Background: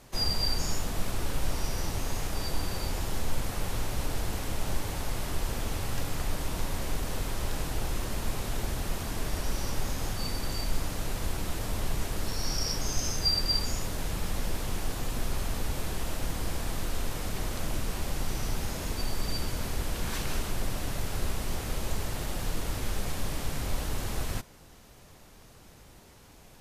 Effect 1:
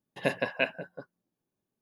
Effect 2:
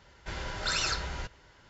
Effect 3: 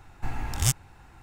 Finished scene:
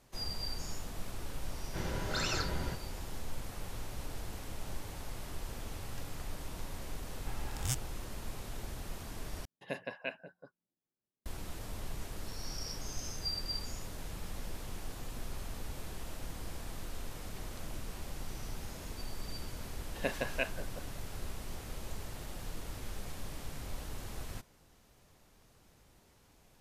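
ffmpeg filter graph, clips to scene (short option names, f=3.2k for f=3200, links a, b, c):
-filter_complex "[1:a]asplit=2[a][b];[0:a]volume=-10.5dB[c];[2:a]equalizer=f=210:w=0.38:g=12[d];[a]aresample=32000,aresample=44100[e];[c]asplit=2[f][g];[f]atrim=end=9.454[h];[e]atrim=end=1.81,asetpts=PTS-STARTPTS,volume=-11.5dB[i];[g]atrim=start=11.256[j];[d]atrim=end=1.69,asetpts=PTS-STARTPTS,volume=-6.5dB,afade=t=in:d=0.004:c=hsin,afade=t=out:st=1.686:d=0.004:c=hsin,adelay=1480[k];[3:a]atrim=end=1.22,asetpts=PTS-STARTPTS,volume=-11dB,afade=t=in:d=0.004:c=hsin,afade=t=out:st=1.216:d=0.004:c=hsin,adelay=7030[l];[b]atrim=end=1.81,asetpts=PTS-STARTPTS,volume=-6.5dB,afade=t=in:d=0.004:c=hsin,afade=t=out:st=1.806:d=0.004:c=hsin,adelay=19790[m];[h][i]acrossfade=d=0.004:c1=hsin:c2=hsin[n];[n][j]acrossfade=d=0.004:c1=hsin:c2=hsin[o];[o][k][l][m]amix=inputs=4:normalize=0"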